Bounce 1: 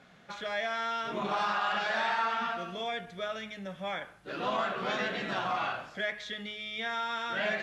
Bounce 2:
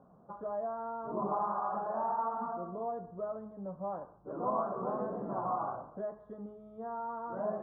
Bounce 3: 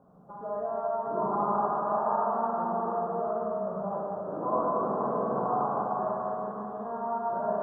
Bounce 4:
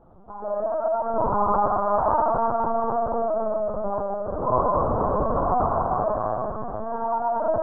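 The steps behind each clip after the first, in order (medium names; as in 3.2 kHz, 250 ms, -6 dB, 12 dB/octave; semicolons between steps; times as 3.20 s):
elliptic low-pass 1.1 kHz, stop band 50 dB
two-band feedback delay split 920 Hz, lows 210 ms, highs 479 ms, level -6 dB; Schroeder reverb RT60 3.5 s, DRR -4.5 dB
LPC vocoder at 8 kHz pitch kept; trim +6.5 dB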